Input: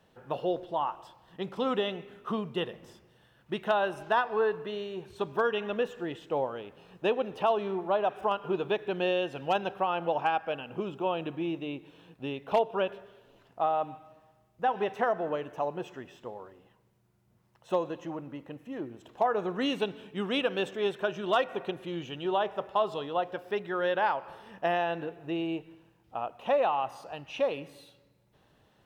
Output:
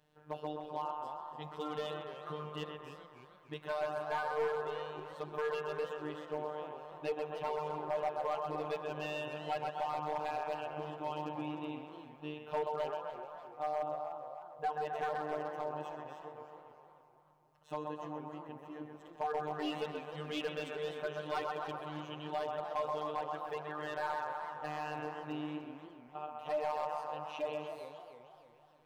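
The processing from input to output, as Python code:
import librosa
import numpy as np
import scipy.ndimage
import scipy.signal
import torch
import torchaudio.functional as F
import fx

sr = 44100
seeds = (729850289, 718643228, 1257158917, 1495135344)

y = fx.echo_banded(x, sr, ms=129, feedback_pct=75, hz=990.0, wet_db=-3.0)
y = fx.robotise(y, sr, hz=151.0)
y = np.clip(y, -10.0 ** (-21.5 / 20.0), 10.0 ** (-21.5 / 20.0))
y = fx.echo_warbled(y, sr, ms=299, feedback_pct=48, rate_hz=2.8, cents=207, wet_db=-12)
y = y * librosa.db_to_amplitude(-6.5)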